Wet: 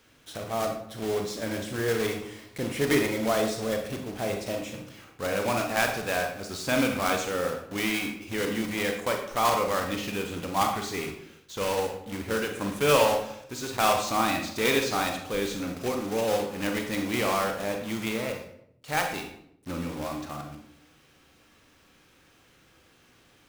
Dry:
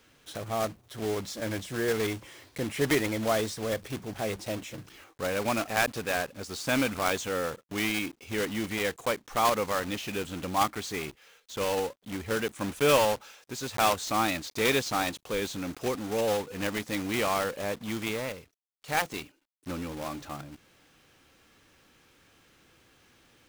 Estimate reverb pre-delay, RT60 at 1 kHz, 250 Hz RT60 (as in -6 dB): 32 ms, 0.65 s, 0.90 s